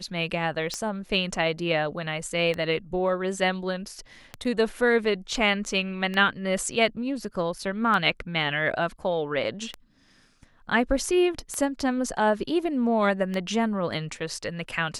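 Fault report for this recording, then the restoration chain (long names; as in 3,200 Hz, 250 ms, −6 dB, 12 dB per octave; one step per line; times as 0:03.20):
scratch tick 33 1/3 rpm −16 dBFS
0:04.44–0:04.45: drop-out 8 ms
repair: click removal
repair the gap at 0:04.44, 8 ms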